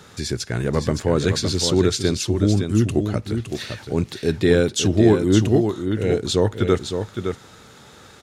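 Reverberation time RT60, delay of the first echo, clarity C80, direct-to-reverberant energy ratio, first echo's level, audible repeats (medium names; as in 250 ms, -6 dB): no reverb, 563 ms, no reverb, no reverb, -7.0 dB, 1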